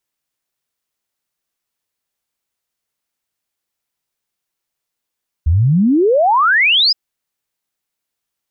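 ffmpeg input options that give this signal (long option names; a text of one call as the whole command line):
ffmpeg -f lavfi -i "aevalsrc='0.355*clip(min(t,1.47-t)/0.01,0,1)*sin(2*PI*72*1.47/log(5200/72)*(exp(log(5200/72)*t/1.47)-1))':duration=1.47:sample_rate=44100" out.wav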